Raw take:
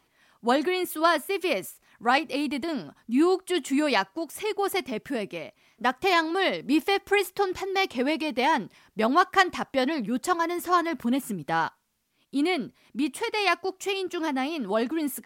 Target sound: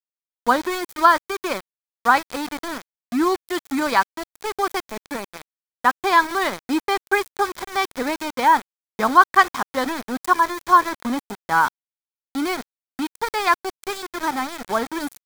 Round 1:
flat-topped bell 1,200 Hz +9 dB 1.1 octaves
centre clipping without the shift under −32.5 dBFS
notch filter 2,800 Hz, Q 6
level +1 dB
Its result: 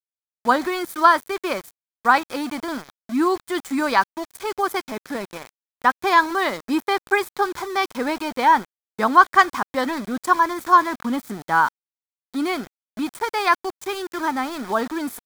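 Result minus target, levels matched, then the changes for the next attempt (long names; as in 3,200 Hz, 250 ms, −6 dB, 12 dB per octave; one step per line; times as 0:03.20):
centre clipping without the shift: distortion −7 dB
change: centre clipping without the shift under −26.5 dBFS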